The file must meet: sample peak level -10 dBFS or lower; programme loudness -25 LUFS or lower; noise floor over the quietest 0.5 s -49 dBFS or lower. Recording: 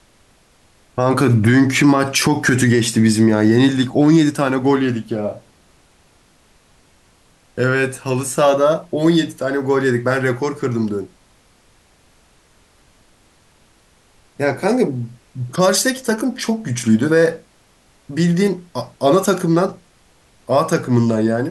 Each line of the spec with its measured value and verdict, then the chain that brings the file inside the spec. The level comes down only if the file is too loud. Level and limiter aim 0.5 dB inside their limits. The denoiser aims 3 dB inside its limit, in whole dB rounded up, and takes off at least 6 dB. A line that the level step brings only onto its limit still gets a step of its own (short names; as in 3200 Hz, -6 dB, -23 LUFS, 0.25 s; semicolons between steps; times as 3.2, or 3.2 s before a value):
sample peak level -4.0 dBFS: fail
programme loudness -16.5 LUFS: fail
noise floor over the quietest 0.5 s -54 dBFS: OK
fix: gain -9 dB